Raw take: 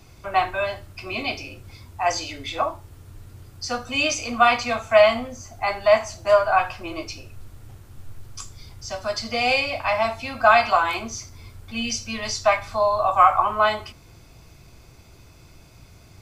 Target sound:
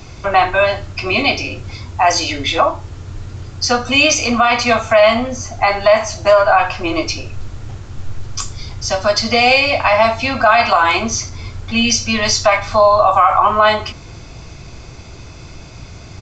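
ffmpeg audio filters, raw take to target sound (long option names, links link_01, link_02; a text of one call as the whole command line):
ffmpeg -i in.wav -filter_complex "[0:a]asplit=2[link_01][link_02];[link_02]acompressor=threshold=-27dB:ratio=6,volume=-1dB[link_03];[link_01][link_03]amix=inputs=2:normalize=0,aresample=16000,aresample=44100,alimiter=level_in=9.5dB:limit=-1dB:release=50:level=0:latency=1,volume=-1dB" out.wav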